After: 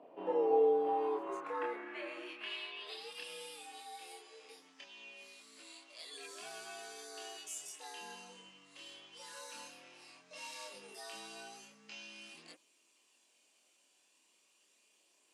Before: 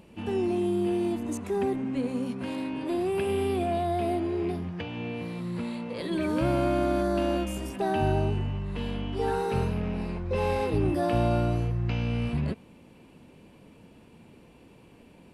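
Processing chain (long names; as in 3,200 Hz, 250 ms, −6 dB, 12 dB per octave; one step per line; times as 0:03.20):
band-pass filter sweep 590 Hz → 6,800 Hz, 0:00.69–0:03.55
frequency shifter +92 Hz
multi-voice chorus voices 2, 0.16 Hz, delay 27 ms, depth 3.8 ms
level +8.5 dB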